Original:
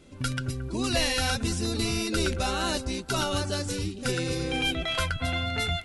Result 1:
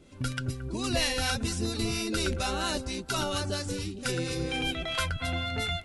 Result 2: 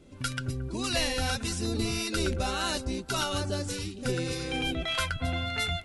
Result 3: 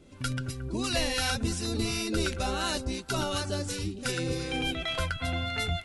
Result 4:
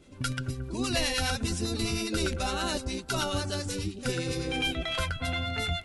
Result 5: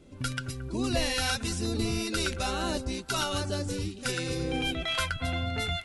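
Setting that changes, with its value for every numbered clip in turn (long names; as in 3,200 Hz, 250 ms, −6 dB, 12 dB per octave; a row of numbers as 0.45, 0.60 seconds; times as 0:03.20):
two-band tremolo in antiphase, speed: 4.3, 1.7, 2.8, 9.8, 1.1 Hertz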